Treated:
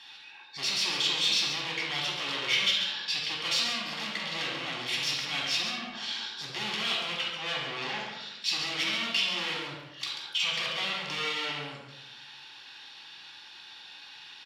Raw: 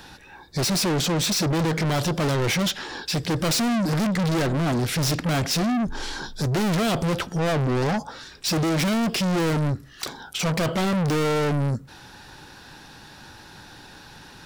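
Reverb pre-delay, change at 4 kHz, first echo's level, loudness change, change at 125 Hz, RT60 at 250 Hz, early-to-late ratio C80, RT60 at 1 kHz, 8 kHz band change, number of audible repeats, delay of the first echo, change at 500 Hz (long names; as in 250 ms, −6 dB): 4 ms, +2.5 dB, −7.5 dB, −5.5 dB, −24.5 dB, 1.3 s, 3.5 dB, 0.85 s, −9.0 dB, 1, 138 ms, −16.5 dB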